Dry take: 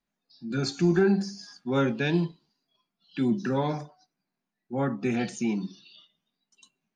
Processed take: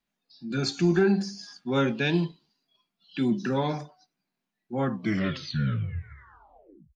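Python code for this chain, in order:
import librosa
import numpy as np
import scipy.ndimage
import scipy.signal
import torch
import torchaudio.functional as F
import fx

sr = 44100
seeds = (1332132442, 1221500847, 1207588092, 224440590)

y = fx.tape_stop_end(x, sr, length_s=2.16)
y = fx.peak_eq(y, sr, hz=3100.0, db=4.5, octaves=1.2)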